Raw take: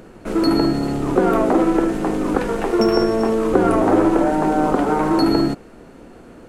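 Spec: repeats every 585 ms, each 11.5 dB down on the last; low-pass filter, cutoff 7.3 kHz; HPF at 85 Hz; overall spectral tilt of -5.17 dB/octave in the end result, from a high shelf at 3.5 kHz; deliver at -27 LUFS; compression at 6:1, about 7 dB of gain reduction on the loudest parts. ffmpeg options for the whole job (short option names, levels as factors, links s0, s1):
-af "highpass=85,lowpass=7300,highshelf=f=3500:g=4,acompressor=threshold=0.112:ratio=6,aecho=1:1:585|1170|1755:0.266|0.0718|0.0194,volume=0.631"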